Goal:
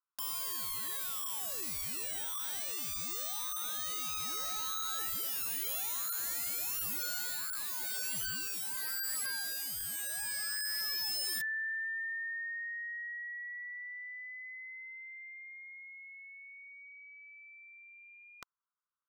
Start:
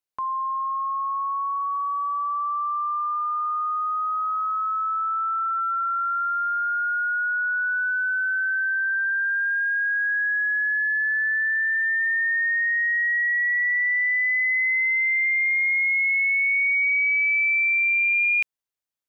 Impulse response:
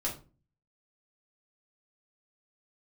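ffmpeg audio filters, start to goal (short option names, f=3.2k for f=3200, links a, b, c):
-af "asuperpass=centerf=1200:order=8:qfactor=2.2,aeval=exprs='(mod(89.1*val(0)+1,2)-1)/89.1':c=same,volume=6.5dB"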